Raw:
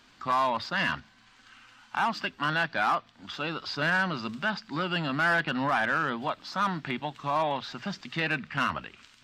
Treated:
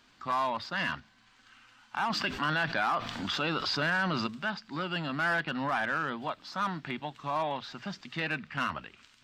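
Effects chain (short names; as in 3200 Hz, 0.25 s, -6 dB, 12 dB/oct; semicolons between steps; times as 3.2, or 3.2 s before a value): 2.1–4.27 fast leveller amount 70%; gain -4 dB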